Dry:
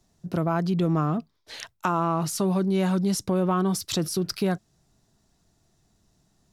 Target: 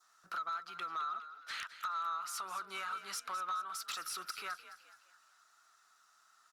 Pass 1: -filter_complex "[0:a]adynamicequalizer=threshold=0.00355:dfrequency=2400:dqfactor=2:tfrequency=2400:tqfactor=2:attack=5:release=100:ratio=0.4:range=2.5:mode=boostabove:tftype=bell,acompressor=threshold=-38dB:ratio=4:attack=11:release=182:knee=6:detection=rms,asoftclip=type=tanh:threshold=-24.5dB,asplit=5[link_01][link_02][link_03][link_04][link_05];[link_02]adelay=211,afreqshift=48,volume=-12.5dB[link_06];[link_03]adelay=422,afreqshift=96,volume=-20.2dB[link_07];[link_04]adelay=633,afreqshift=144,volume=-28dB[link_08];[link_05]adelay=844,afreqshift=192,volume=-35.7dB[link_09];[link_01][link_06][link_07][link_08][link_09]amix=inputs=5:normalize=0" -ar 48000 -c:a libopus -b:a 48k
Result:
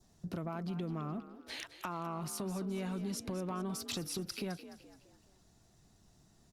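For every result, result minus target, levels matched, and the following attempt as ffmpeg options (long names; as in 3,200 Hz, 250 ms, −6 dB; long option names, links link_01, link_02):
soft clipping: distortion −14 dB; 1,000 Hz band −7.0 dB
-filter_complex "[0:a]adynamicequalizer=threshold=0.00355:dfrequency=2400:dqfactor=2:tfrequency=2400:tqfactor=2:attack=5:release=100:ratio=0.4:range=2.5:mode=boostabove:tftype=bell,acompressor=threshold=-38dB:ratio=4:attack=11:release=182:knee=6:detection=rms,asoftclip=type=tanh:threshold=-32.5dB,asplit=5[link_01][link_02][link_03][link_04][link_05];[link_02]adelay=211,afreqshift=48,volume=-12.5dB[link_06];[link_03]adelay=422,afreqshift=96,volume=-20.2dB[link_07];[link_04]adelay=633,afreqshift=144,volume=-28dB[link_08];[link_05]adelay=844,afreqshift=192,volume=-35.7dB[link_09];[link_01][link_06][link_07][link_08][link_09]amix=inputs=5:normalize=0" -ar 48000 -c:a libopus -b:a 48k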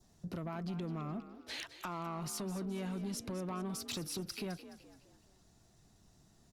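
1,000 Hz band −7.5 dB
-filter_complex "[0:a]adynamicequalizer=threshold=0.00355:dfrequency=2400:dqfactor=2:tfrequency=2400:tqfactor=2:attack=5:release=100:ratio=0.4:range=2.5:mode=boostabove:tftype=bell,highpass=frequency=1300:width_type=q:width=13,acompressor=threshold=-38dB:ratio=4:attack=11:release=182:knee=6:detection=rms,asoftclip=type=tanh:threshold=-32.5dB,asplit=5[link_01][link_02][link_03][link_04][link_05];[link_02]adelay=211,afreqshift=48,volume=-12.5dB[link_06];[link_03]adelay=422,afreqshift=96,volume=-20.2dB[link_07];[link_04]adelay=633,afreqshift=144,volume=-28dB[link_08];[link_05]adelay=844,afreqshift=192,volume=-35.7dB[link_09];[link_01][link_06][link_07][link_08][link_09]amix=inputs=5:normalize=0" -ar 48000 -c:a libopus -b:a 48k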